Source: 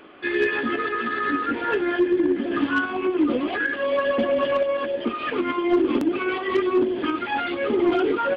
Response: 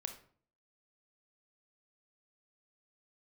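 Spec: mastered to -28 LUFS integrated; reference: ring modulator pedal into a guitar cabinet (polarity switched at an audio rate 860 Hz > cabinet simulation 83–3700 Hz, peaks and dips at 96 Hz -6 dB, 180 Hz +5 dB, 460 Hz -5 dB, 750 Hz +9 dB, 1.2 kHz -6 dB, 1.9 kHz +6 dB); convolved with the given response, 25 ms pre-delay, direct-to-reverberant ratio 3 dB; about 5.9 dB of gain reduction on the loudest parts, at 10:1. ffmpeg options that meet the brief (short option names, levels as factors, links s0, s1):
-filter_complex "[0:a]acompressor=threshold=0.0794:ratio=10,asplit=2[s0][s1];[1:a]atrim=start_sample=2205,adelay=25[s2];[s1][s2]afir=irnorm=-1:irlink=0,volume=0.891[s3];[s0][s3]amix=inputs=2:normalize=0,aeval=exprs='val(0)*sgn(sin(2*PI*860*n/s))':c=same,highpass=83,equalizer=f=96:t=q:w=4:g=-6,equalizer=f=180:t=q:w=4:g=5,equalizer=f=460:t=q:w=4:g=-5,equalizer=f=750:t=q:w=4:g=9,equalizer=f=1200:t=q:w=4:g=-6,equalizer=f=1900:t=q:w=4:g=6,lowpass=f=3700:w=0.5412,lowpass=f=3700:w=1.3066,volume=0.596"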